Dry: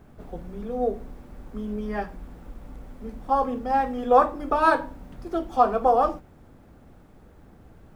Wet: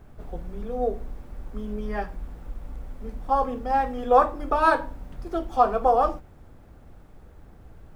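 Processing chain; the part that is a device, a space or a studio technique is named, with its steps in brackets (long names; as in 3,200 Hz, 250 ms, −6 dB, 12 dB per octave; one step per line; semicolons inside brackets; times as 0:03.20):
low shelf boost with a cut just above (low-shelf EQ 71 Hz +7.5 dB; parametric band 230 Hz −4 dB 1.1 octaves)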